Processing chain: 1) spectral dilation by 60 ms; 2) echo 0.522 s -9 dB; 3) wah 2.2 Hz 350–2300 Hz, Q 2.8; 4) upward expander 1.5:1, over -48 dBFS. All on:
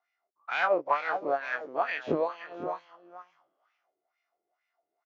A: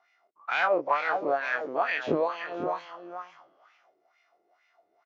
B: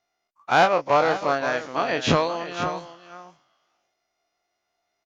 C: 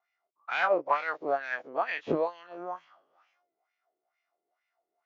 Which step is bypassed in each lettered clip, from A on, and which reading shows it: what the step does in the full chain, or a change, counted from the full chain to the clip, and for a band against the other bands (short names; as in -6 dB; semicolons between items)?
4, momentary loudness spread change +4 LU; 3, 125 Hz band +8.5 dB; 2, momentary loudness spread change +2 LU